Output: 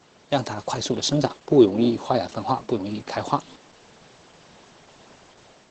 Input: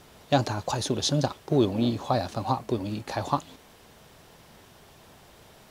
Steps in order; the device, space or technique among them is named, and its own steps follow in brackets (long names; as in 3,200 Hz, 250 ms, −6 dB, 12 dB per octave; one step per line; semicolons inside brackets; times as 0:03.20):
0:01.04–0:02.72: dynamic equaliser 360 Hz, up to +7 dB, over −36 dBFS, Q 2.4
video call (high-pass filter 150 Hz 12 dB per octave; automatic gain control gain up to 5 dB; Opus 12 kbit/s 48,000 Hz)